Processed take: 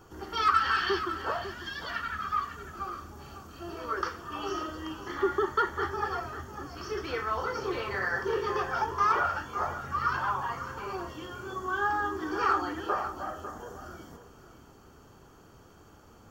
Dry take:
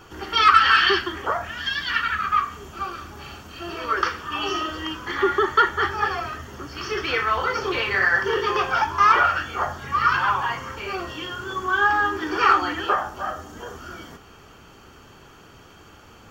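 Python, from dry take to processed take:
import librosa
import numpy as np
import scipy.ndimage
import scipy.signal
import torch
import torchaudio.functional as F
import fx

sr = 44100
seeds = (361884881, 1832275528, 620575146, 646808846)

y = fx.peak_eq(x, sr, hz=2600.0, db=-11.0, octaves=1.5)
y = y + 10.0 ** (-11.5 / 20.0) * np.pad(y, (int(549 * sr / 1000.0), 0))[:len(y)]
y = y * 10.0 ** (-5.5 / 20.0)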